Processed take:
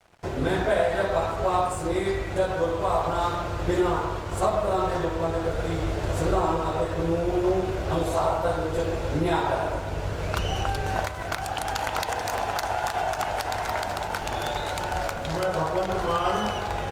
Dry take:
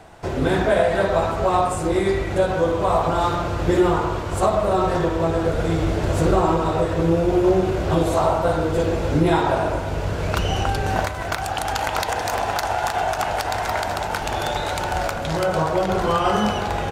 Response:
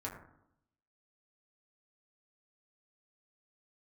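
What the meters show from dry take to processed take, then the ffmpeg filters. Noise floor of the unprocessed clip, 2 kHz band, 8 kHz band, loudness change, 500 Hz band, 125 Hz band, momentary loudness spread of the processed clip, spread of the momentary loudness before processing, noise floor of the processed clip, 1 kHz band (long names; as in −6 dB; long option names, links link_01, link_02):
−27 dBFS, −4.5 dB, −4.5 dB, −5.5 dB, −5.5 dB, −6.5 dB, 5 LU, 6 LU, −32 dBFS, −4.5 dB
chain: -af "adynamicequalizer=threshold=0.0251:dfrequency=210:dqfactor=1.1:tfrequency=210:tqfactor=1.1:attack=5:release=100:ratio=0.375:range=3:mode=cutabove:tftype=bell,aeval=exprs='sgn(val(0))*max(abs(val(0))-0.00596,0)':channel_layout=same,volume=-4dB" -ar 48000 -c:a libopus -b:a 48k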